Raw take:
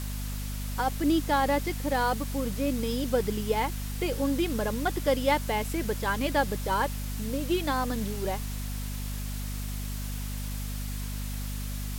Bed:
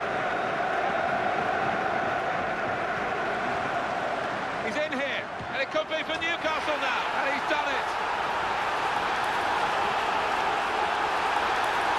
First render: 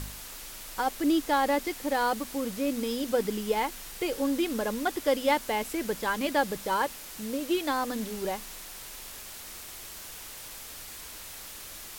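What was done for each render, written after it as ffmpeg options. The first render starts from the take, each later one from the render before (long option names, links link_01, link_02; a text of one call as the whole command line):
ffmpeg -i in.wav -af "bandreject=frequency=50:width_type=h:width=4,bandreject=frequency=100:width_type=h:width=4,bandreject=frequency=150:width_type=h:width=4,bandreject=frequency=200:width_type=h:width=4,bandreject=frequency=250:width_type=h:width=4" out.wav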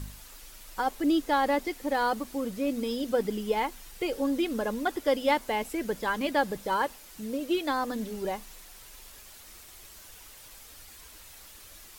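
ffmpeg -i in.wav -af "afftdn=noise_reduction=8:noise_floor=-43" out.wav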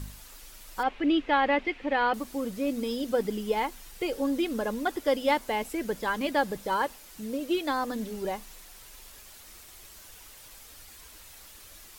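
ffmpeg -i in.wav -filter_complex "[0:a]asettb=1/sr,asplit=3[link_01][link_02][link_03];[link_01]atrim=end=0.834[link_04];[link_02]atrim=start=0.83:end=2.14,asetpts=PTS-STARTPTS,afade=type=in:duration=0.004:curve=qsin,afade=type=out:start_time=1.306:duration=0.004:curve=qsin,lowpass=frequency=2600:width_type=q:width=2.7[link_05];[link_03]atrim=start=2.136[link_06];[link_04][link_05]acrossfade=duration=0.004:curve1=hsin:curve2=qsin[link_07];[link_07][link_06]acrossfade=duration=0.004:curve1=qsin:curve2=hsin" out.wav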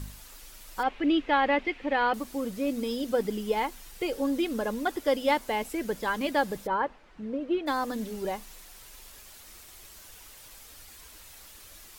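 ffmpeg -i in.wav -filter_complex "[0:a]asplit=3[link_01][link_02][link_03];[link_01]afade=type=out:start_time=6.66:duration=0.02[link_04];[link_02]lowpass=1900,afade=type=in:start_time=6.66:duration=0.02,afade=type=out:start_time=7.66:duration=0.02[link_05];[link_03]afade=type=in:start_time=7.66:duration=0.02[link_06];[link_04][link_05][link_06]amix=inputs=3:normalize=0" out.wav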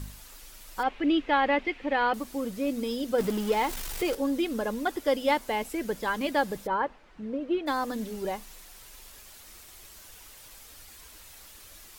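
ffmpeg -i in.wav -filter_complex "[0:a]asettb=1/sr,asplit=3[link_01][link_02][link_03];[link_01]atrim=end=3.184[link_04];[link_02]atrim=start=3.18:end=4.15,asetpts=PTS-STARTPTS,afade=type=in:duration=0.004:curve=qsin,afade=type=out:start_time=0.966:duration=0.004:curve=qsin,aeval=exprs='val(0)+0.5*0.0266*sgn(val(0))':channel_layout=same[link_05];[link_03]atrim=start=4.146[link_06];[link_04][link_05]acrossfade=duration=0.004:curve1=hsin:curve2=qsin[link_07];[link_07][link_06]acrossfade=duration=0.004:curve1=qsin:curve2=hsin" out.wav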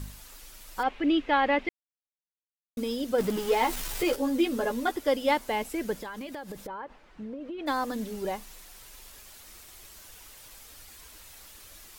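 ffmpeg -i in.wav -filter_complex "[0:a]asettb=1/sr,asplit=3[link_01][link_02][link_03];[link_01]atrim=end=3.354[link_04];[link_02]atrim=start=3.35:end=4.92,asetpts=PTS-STARTPTS,afade=type=in:duration=0.004:curve=qsin,afade=type=out:start_time=1.566:duration=0.004:curve=qsin,asplit=2[link_05][link_06];[link_06]adelay=12,volume=-3dB[link_07];[link_05][link_07]amix=inputs=2:normalize=0,atrim=end_sample=69237[link_08];[link_03]atrim=start=4.916[link_09];[link_04][link_08]acrossfade=duration=0.004:curve1=hsin:curve2=qsin[link_10];[link_10][link_09]acrossfade=duration=0.004:curve1=qsin:curve2=hsin,asplit=3[link_11][link_12][link_13];[link_11]afade=type=out:start_time=6:duration=0.02[link_14];[link_12]acompressor=threshold=-34dB:ratio=16:attack=3.2:release=140:knee=1:detection=peak,afade=type=in:start_time=6:duration=0.02,afade=type=out:start_time=7.58:duration=0.02[link_15];[link_13]afade=type=in:start_time=7.58:duration=0.02[link_16];[link_14][link_15][link_16]amix=inputs=3:normalize=0,asplit=3[link_17][link_18][link_19];[link_17]atrim=end=1.69,asetpts=PTS-STARTPTS,afade=type=out:start_time=1.686:duration=0.004:curve=hsin[link_20];[link_18]atrim=start=1.69:end=2.77,asetpts=PTS-STARTPTS,volume=0[link_21];[link_19]atrim=start=2.77,asetpts=PTS-STARTPTS,afade=type=in:duration=0.004:curve=hsin[link_22];[link_20][link_21][link_22]concat=n=3:v=0:a=1" out.wav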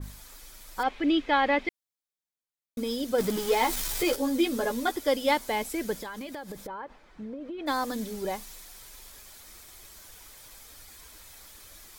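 ffmpeg -i in.wav -af "bandreject=frequency=2800:width=11,adynamicequalizer=threshold=0.00794:dfrequency=2600:dqfactor=0.7:tfrequency=2600:tqfactor=0.7:attack=5:release=100:ratio=0.375:range=2.5:mode=boostabove:tftype=highshelf" out.wav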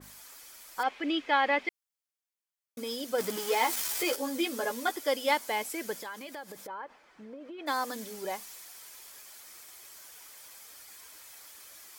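ffmpeg -i in.wav -af "highpass=frequency=630:poles=1,equalizer=frequency=3800:width_type=o:width=0.22:gain=-5" out.wav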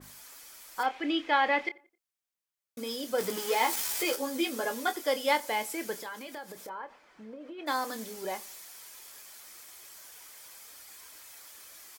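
ffmpeg -i in.wav -filter_complex "[0:a]asplit=2[link_01][link_02];[link_02]adelay=27,volume=-11dB[link_03];[link_01][link_03]amix=inputs=2:normalize=0,asplit=2[link_04][link_05];[link_05]adelay=88,lowpass=frequency=2000:poles=1,volume=-22.5dB,asplit=2[link_06][link_07];[link_07]adelay=88,lowpass=frequency=2000:poles=1,volume=0.45,asplit=2[link_08][link_09];[link_09]adelay=88,lowpass=frequency=2000:poles=1,volume=0.45[link_10];[link_04][link_06][link_08][link_10]amix=inputs=4:normalize=0" out.wav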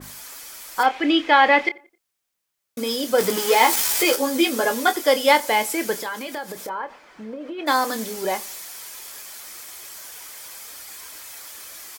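ffmpeg -i in.wav -af "volume=11dB,alimiter=limit=-2dB:level=0:latency=1" out.wav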